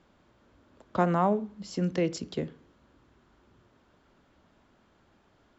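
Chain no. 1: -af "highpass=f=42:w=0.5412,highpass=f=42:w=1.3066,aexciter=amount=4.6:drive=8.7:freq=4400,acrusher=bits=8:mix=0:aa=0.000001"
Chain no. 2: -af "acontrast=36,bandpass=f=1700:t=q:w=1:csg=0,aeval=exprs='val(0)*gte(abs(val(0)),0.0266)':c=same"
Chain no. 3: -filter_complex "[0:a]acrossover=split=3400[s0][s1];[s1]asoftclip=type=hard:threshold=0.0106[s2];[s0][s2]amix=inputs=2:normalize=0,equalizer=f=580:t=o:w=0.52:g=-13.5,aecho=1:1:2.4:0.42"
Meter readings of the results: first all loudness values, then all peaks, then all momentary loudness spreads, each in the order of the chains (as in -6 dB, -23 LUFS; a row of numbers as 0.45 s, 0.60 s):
-28.0 LUFS, -32.0 LUFS, -32.5 LUFS; -9.5 dBFS, -12.5 dBFS, -17.0 dBFS; 10 LU, 19 LU, 11 LU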